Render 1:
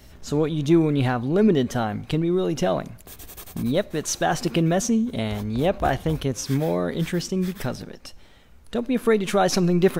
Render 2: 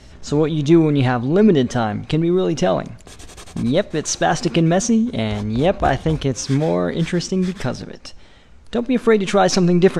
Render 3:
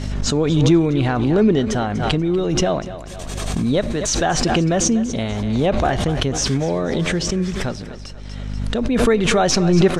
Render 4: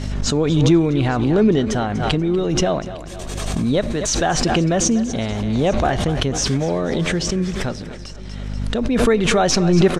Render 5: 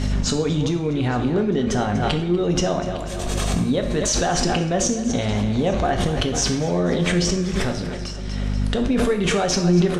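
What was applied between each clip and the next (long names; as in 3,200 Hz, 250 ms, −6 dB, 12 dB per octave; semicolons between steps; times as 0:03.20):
low-pass filter 8,200 Hz 24 dB per octave; level +5 dB
feedback echo with a high-pass in the loop 242 ms, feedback 39%, high-pass 280 Hz, level −12.5 dB; mains hum 50 Hz, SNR 19 dB; background raised ahead of every attack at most 26 dB per second; level −2.5 dB
single-tap delay 856 ms −22.5 dB
downward compressor, threshold −21 dBFS, peak gain reduction 11.5 dB; on a send at −4.5 dB: convolution reverb, pre-delay 3 ms; on the sum: level +2.5 dB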